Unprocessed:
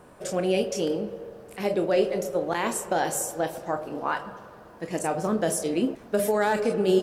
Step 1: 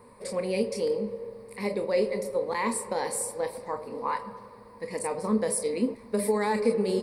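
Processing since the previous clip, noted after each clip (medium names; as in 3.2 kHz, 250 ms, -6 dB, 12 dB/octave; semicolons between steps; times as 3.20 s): rippled EQ curve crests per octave 0.93, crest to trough 15 dB; trim -5 dB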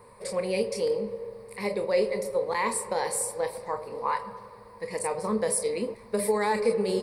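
peaking EQ 260 Hz -14 dB 0.45 oct; trim +2 dB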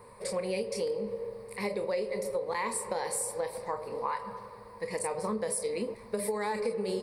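compression 5:1, threshold -29 dBFS, peak gain reduction 9.5 dB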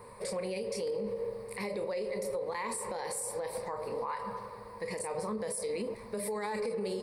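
peak limiter -29.5 dBFS, peak gain reduction 9.5 dB; trim +2 dB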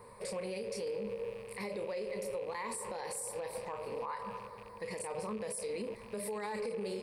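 rattle on loud lows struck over -51 dBFS, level -41 dBFS; trim -3.5 dB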